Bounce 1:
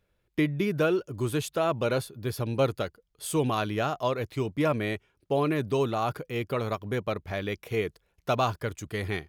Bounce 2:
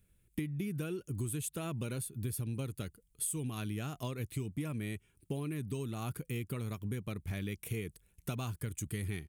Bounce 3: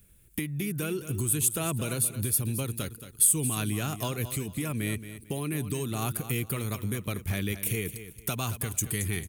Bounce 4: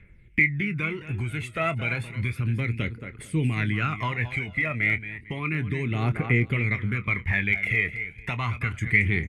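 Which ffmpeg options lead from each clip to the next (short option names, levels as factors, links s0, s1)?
-af "firequalizer=gain_entry='entry(190,0);entry(580,-17);entry(2400,-6);entry(4900,-9);entry(8800,10);entry(13000,4)':delay=0.05:min_phase=1,acompressor=threshold=0.0112:ratio=10,volume=1.78"
-filter_complex "[0:a]acrossover=split=530|900[s0][s1][s2];[s0]alimiter=level_in=2.82:limit=0.0631:level=0:latency=1:release=449,volume=0.355[s3];[s3][s1][s2]amix=inputs=3:normalize=0,crystalizer=i=1:c=0,aecho=1:1:224|448|672:0.251|0.0678|0.0183,volume=2.82"
-filter_complex "[0:a]lowpass=f=2100:t=q:w=12,aphaser=in_gain=1:out_gain=1:delay=1.6:decay=0.59:speed=0.32:type=triangular,asplit=2[s0][s1];[s1]adelay=25,volume=0.224[s2];[s0][s2]amix=inputs=2:normalize=0"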